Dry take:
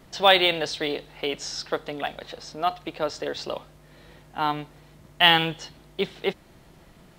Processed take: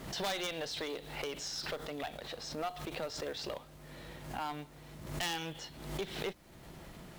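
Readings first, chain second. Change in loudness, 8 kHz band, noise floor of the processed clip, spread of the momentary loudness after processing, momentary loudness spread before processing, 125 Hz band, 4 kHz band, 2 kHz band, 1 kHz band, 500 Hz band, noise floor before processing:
−15.0 dB, −3.5 dB, −55 dBFS, 15 LU, 18 LU, −7.0 dB, −16.0 dB, −16.0 dB, −15.5 dB, −13.0 dB, −53 dBFS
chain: downward compressor 2 to 1, threshold −45 dBFS, peak gain reduction 18 dB
wrap-around overflow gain 22.5 dB
log-companded quantiser 6 bits
asymmetric clip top −37 dBFS, bottom −29 dBFS
background raised ahead of every attack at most 65 dB per second
level +1.5 dB

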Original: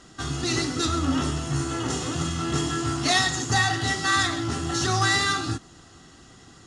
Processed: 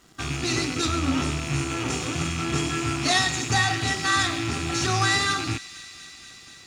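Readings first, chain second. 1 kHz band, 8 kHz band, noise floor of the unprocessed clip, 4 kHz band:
−0.5 dB, 0.0 dB, −51 dBFS, +0.5 dB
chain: loose part that buzzes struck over −35 dBFS, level −22 dBFS
dead-zone distortion −53 dBFS
delay with a high-pass on its return 241 ms, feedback 81%, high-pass 2,500 Hz, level −15.5 dB

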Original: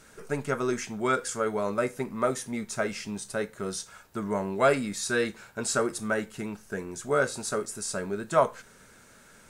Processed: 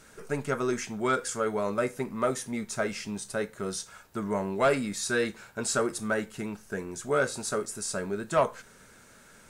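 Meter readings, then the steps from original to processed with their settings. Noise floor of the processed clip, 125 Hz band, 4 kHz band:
−55 dBFS, −0.5 dB, 0.0 dB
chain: soft clipping −14.5 dBFS, distortion −20 dB

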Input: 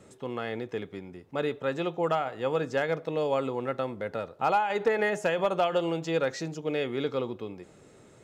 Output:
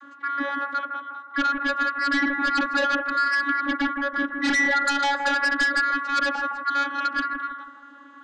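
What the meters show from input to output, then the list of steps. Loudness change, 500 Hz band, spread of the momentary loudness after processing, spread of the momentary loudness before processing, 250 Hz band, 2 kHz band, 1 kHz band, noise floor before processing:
+6.5 dB, −7.5 dB, 9 LU, 10 LU, +5.5 dB, +14.5 dB, +7.5 dB, −55 dBFS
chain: neighbouring bands swapped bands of 1,000 Hz
low-pass filter 3,500 Hz 12 dB per octave
channel vocoder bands 32, saw 281 Hz
in parallel at −10.5 dB: sine wavefolder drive 13 dB, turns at −13.5 dBFS
on the sum: bucket-brigade delay 161 ms, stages 2,048, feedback 36%, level −5.5 dB

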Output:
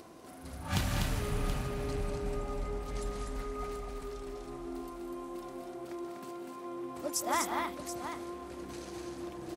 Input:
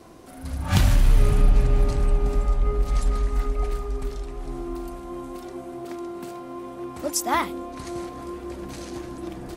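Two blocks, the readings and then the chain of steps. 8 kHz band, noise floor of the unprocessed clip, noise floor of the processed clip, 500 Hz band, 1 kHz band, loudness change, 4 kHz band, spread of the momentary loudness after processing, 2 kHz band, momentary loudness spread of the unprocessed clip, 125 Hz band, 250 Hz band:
−6.5 dB, −40 dBFS, −47 dBFS, −7.0 dB, −6.5 dB, −11.0 dB, −6.5 dB, 11 LU, −6.5 dB, 15 LU, −13.5 dB, −8.0 dB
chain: high-pass filter 150 Hz 6 dB per octave
upward compression, threshold −38 dBFS
on a send: multi-tap delay 169/197/247/728 ms −12.5/−9.5/−4/−10.5 dB
on the sum: level −8.5 dB

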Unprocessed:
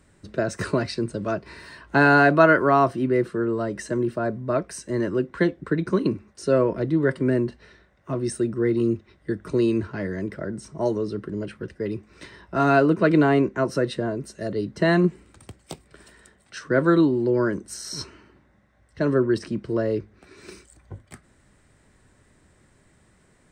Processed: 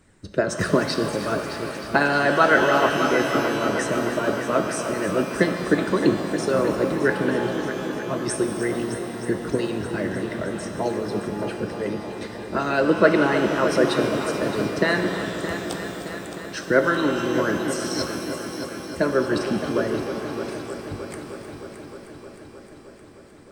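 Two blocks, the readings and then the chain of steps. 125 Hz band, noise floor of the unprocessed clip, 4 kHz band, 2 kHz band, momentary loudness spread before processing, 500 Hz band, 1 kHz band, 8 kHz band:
−3.0 dB, −60 dBFS, +7.5 dB, +2.5 dB, 14 LU, +1.0 dB, +1.0 dB, +6.5 dB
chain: echo machine with several playback heads 309 ms, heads first and second, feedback 71%, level −13 dB
harmonic and percussive parts rebalanced harmonic −15 dB
reverb with rising layers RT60 2.9 s, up +12 semitones, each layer −8 dB, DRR 5.5 dB
level +5.5 dB

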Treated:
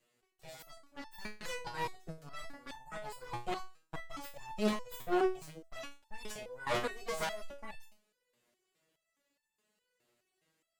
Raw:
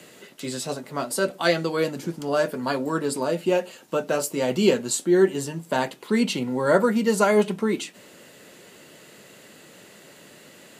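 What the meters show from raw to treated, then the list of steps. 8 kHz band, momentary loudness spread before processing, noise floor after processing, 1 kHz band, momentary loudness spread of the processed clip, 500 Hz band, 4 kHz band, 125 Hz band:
−19.5 dB, 11 LU, −84 dBFS, −11.5 dB, 17 LU, −18.0 dB, −14.0 dB, −18.0 dB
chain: harmonic generator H 7 −15 dB, 8 −9 dB, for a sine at −6 dBFS
step-sequenced resonator 4.8 Hz 120–880 Hz
level −7 dB

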